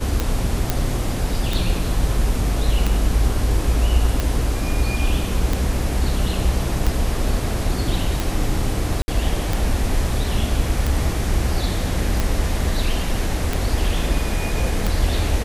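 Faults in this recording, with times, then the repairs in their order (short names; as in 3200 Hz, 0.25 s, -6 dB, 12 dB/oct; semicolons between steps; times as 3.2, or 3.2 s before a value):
tick 45 rpm
0.7 pop
9.02–9.08 gap 60 ms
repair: de-click; interpolate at 9.02, 60 ms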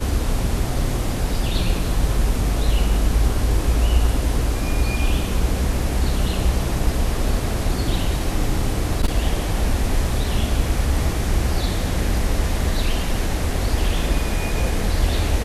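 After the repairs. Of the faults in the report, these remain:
none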